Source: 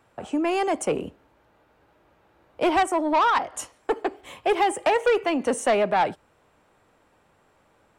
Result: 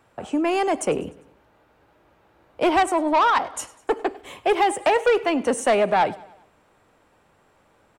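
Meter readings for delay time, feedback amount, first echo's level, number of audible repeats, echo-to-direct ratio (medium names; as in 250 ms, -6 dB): 100 ms, 51%, -21.0 dB, 3, -19.5 dB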